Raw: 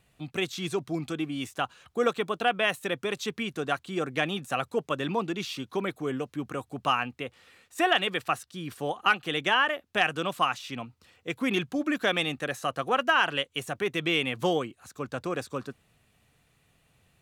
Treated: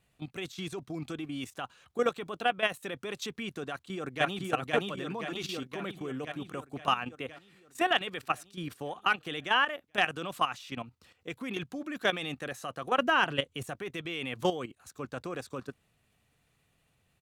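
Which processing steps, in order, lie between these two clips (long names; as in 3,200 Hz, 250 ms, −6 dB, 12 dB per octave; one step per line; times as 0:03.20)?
0:03.68–0:04.43: delay throw 520 ms, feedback 65%, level −0.5 dB
0:12.98–0:13.64: low-shelf EQ 430 Hz +10 dB
output level in coarse steps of 12 dB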